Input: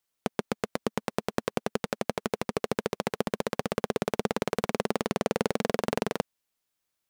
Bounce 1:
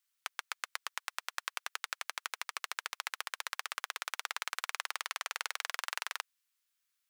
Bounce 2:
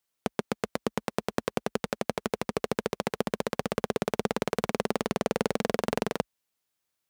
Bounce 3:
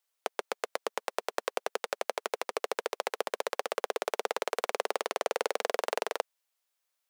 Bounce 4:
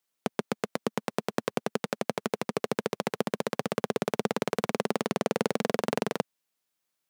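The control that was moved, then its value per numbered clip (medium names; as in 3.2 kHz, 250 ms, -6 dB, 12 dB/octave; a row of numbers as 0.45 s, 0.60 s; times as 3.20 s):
high-pass, cutoff frequency: 1.2 kHz, 44 Hz, 470 Hz, 120 Hz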